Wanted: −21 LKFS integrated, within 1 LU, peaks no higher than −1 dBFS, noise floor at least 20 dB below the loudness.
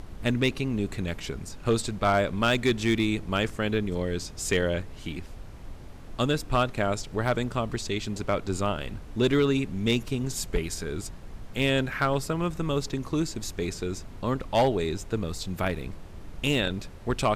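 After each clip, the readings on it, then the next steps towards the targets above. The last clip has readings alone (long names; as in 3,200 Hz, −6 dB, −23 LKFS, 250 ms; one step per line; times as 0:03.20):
share of clipped samples 0.4%; peaks flattened at −15.5 dBFS; background noise floor −43 dBFS; target noise floor −48 dBFS; integrated loudness −28.0 LKFS; sample peak −15.5 dBFS; target loudness −21.0 LKFS
→ clipped peaks rebuilt −15.5 dBFS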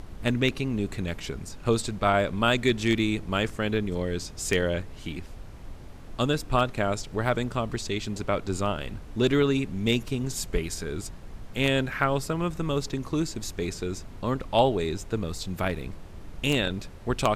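share of clipped samples 0.0%; background noise floor −43 dBFS; target noise floor −48 dBFS
→ noise reduction from a noise print 6 dB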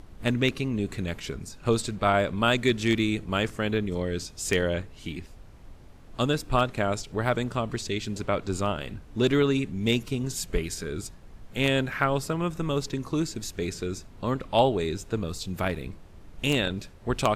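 background noise floor −48 dBFS; integrated loudness −28.0 LKFS; sample peak −6.5 dBFS; target loudness −21.0 LKFS
→ level +7 dB
brickwall limiter −1 dBFS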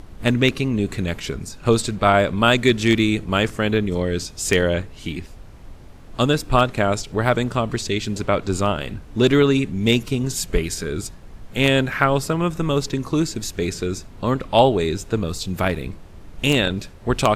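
integrated loudness −21.0 LKFS; sample peak −1.0 dBFS; background noise floor −41 dBFS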